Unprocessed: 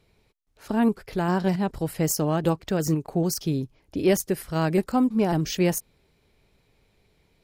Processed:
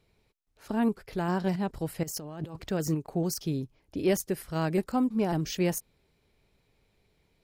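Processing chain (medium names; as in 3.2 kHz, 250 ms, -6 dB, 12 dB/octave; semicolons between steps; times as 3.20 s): 2.03–2.67 s: compressor with a negative ratio -34 dBFS, ratio -1; trim -5 dB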